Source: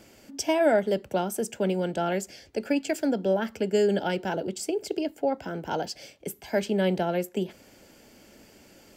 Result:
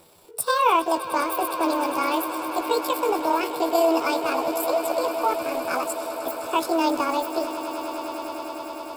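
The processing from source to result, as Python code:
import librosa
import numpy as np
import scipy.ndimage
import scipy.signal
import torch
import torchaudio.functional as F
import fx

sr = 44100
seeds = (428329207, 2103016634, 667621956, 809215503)

p1 = fx.pitch_heads(x, sr, semitones=8.5)
p2 = fx.peak_eq(p1, sr, hz=11000.0, db=4.0, octaves=0.63)
p3 = np.where(np.abs(p2) >= 10.0 ** (-34.0 / 20.0), p2, 0.0)
p4 = p2 + (p3 * librosa.db_to_amplitude(-6.5))
y = fx.echo_swell(p4, sr, ms=102, loudest=8, wet_db=-16.0)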